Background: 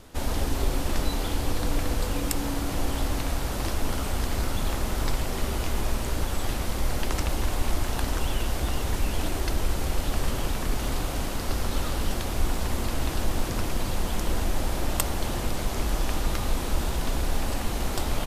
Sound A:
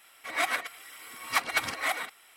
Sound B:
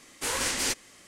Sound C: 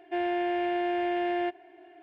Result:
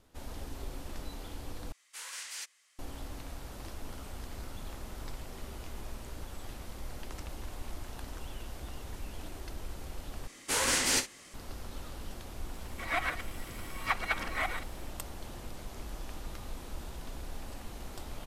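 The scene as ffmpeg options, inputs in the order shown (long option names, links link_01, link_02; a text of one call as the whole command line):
ffmpeg -i bed.wav -i cue0.wav -i cue1.wav -filter_complex "[2:a]asplit=2[link_01][link_02];[0:a]volume=-15.5dB[link_03];[link_01]highpass=1200[link_04];[link_02]aecho=1:1:28|59:0.282|0.211[link_05];[1:a]acrossover=split=3200[link_06][link_07];[link_07]acompressor=threshold=-46dB:ratio=4:attack=1:release=60[link_08];[link_06][link_08]amix=inputs=2:normalize=0[link_09];[link_03]asplit=3[link_10][link_11][link_12];[link_10]atrim=end=1.724[link_13];[link_04]atrim=end=1.07,asetpts=PTS-STARTPTS,volume=-13dB[link_14];[link_11]atrim=start=2.786:end=10.274[link_15];[link_05]atrim=end=1.07[link_16];[link_12]atrim=start=11.336[link_17];[link_09]atrim=end=2.36,asetpts=PTS-STARTPTS,volume=-3dB,afade=type=in:duration=0.004:curve=hsin,afade=type=out:start_time=2.356:duration=0.004:curve=hsin,adelay=12540[link_18];[link_13][link_14]acrossfade=duration=0.004:curve1=hsin:curve2=hsin[link_19];[link_19][link_15]acrossfade=duration=0.004:curve1=hsin:curve2=hsin[link_20];[link_20][link_16]acrossfade=duration=0.004:curve1=hsin:curve2=hsin[link_21];[link_21][link_17]acrossfade=duration=0.004:curve1=hsin:curve2=hsin[link_22];[link_22][link_18]amix=inputs=2:normalize=0" out.wav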